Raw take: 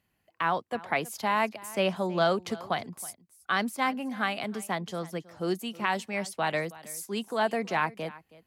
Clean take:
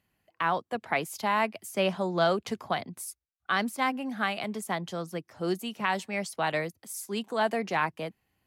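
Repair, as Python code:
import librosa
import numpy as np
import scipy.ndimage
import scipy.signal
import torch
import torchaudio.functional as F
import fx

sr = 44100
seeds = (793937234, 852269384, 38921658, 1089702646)

y = fx.fix_echo_inverse(x, sr, delay_ms=321, level_db=-19.5)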